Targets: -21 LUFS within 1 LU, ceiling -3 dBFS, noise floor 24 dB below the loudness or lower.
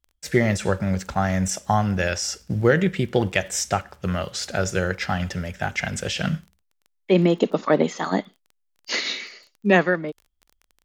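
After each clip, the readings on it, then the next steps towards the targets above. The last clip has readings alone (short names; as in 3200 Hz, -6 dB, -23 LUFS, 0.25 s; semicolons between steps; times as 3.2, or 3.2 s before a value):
ticks 19/s; loudness -23.5 LUFS; peak -4.5 dBFS; loudness target -21.0 LUFS
-> de-click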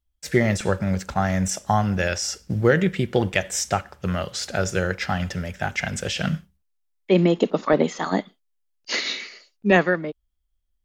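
ticks 0/s; loudness -23.5 LUFS; peak -4.5 dBFS; loudness target -21.0 LUFS
-> gain +2.5 dB; limiter -3 dBFS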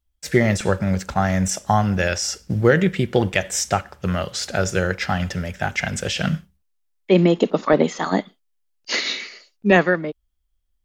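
loudness -21.0 LUFS; peak -3.0 dBFS; noise floor -70 dBFS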